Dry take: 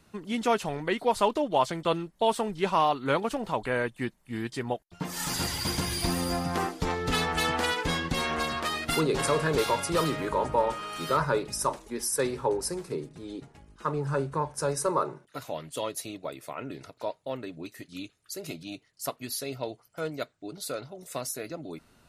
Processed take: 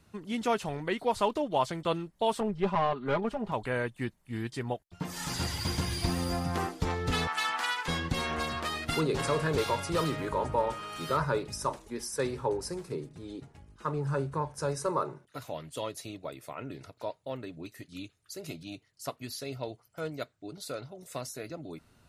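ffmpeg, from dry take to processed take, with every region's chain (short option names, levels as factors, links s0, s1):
-filter_complex "[0:a]asettb=1/sr,asplit=3[s0][s1][s2];[s0]atrim=end=2.404[s3];[s1]atrim=start=2.4:end=3.52,asetpts=PTS-STARTPTS,afade=t=in:d=0.004:c=qsin,afade=t=out:st=1.116:d=0.004:c=qsin,lowpass=f=1600:p=1,aecho=1:1:4.9:0.96,atrim=end_sample=49392,aeval=exprs='(tanh(6.31*val(0)+0.4)-tanh(0.4))/6.31':c=same[s4];[s2]atrim=start=3.516[s5];[s3][s4]acrossfade=d=0.004:c1=hsin:c2=qsin[s6];[s6][s5]acrossfade=d=0.004:c1=qsin:c2=hsin,asettb=1/sr,asplit=3[s7][s8][s9];[s7]atrim=end=7.274[s10];[s8]atrim=start=7.27:end=7.88,asetpts=PTS-STARTPTS,afade=t=in:d=0.004:c=qsin,afade=t=out:st=0.606:d=0.004:c=qsin,highpass=f=210:w=0.5412,highpass=f=210:w=1.3066,lowshelf=f=690:t=q:w=1.5:g=-13[s11];[s9]atrim=start=7.876[s12];[s10][s11]acrossfade=d=0.004:c1=hsin:c2=qsin[s13];[s13][s12]acrossfade=d=0.004:c1=qsin:c2=hsin,acrossover=split=7800[s14][s15];[s15]acompressor=threshold=0.00708:ratio=4:attack=1:release=60[s16];[s14][s16]amix=inputs=2:normalize=0,equalizer=f=92:w=1.3:g=7.5,volume=0.668"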